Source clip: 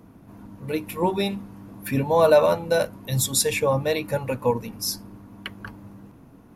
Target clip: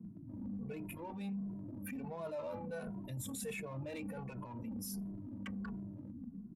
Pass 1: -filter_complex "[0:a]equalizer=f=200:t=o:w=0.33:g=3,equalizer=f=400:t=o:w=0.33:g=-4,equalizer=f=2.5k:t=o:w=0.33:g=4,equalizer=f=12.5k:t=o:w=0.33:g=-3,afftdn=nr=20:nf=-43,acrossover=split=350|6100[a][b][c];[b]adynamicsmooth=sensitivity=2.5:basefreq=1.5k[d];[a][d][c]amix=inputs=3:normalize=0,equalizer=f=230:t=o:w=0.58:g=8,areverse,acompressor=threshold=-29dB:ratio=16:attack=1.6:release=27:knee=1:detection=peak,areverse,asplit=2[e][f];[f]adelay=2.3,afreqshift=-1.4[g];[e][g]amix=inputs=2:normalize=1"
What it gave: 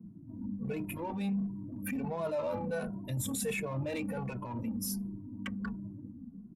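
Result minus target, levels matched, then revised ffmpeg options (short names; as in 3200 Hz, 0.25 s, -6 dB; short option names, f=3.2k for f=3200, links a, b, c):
compressor: peak gain reduction -8 dB
-filter_complex "[0:a]equalizer=f=200:t=o:w=0.33:g=3,equalizer=f=400:t=o:w=0.33:g=-4,equalizer=f=2.5k:t=o:w=0.33:g=4,equalizer=f=12.5k:t=o:w=0.33:g=-3,afftdn=nr=20:nf=-43,acrossover=split=350|6100[a][b][c];[b]adynamicsmooth=sensitivity=2.5:basefreq=1.5k[d];[a][d][c]amix=inputs=3:normalize=0,equalizer=f=230:t=o:w=0.58:g=8,areverse,acompressor=threshold=-37.5dB:ratio=16:attack=1.6:release=27:knee=1:detection=peak,areverse,asplit=2[e][f];[f]adelay=2.3,afreqshift=-1.4[g];[e][g]amix=inputs=2:normalize=1"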